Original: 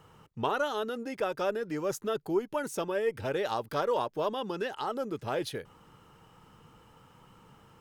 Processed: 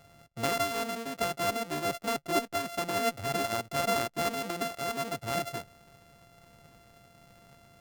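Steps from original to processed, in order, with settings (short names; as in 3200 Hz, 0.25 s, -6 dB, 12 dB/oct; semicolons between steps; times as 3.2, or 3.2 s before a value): sample sorter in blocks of 64 samples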